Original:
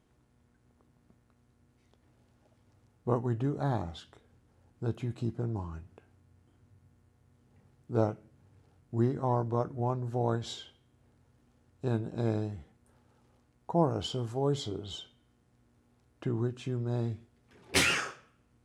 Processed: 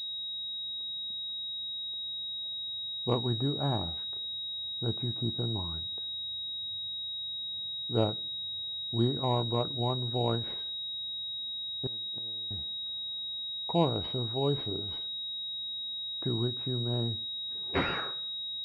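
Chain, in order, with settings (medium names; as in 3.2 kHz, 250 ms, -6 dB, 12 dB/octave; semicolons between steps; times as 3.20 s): 11.86–12.51 s: inverted gate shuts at -28 dBFS, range -26 dB; class-D stage that switches slowly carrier 3.8 kHz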